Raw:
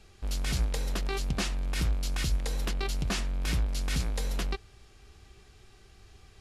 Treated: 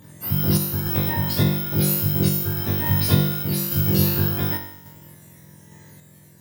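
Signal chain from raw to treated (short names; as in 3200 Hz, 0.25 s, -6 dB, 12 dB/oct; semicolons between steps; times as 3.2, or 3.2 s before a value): spectrum mirrored in octaves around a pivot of 850 Hz; flutter echo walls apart 3.5 m, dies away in 0.86 s; random-step tremolo; gain +8.5 dB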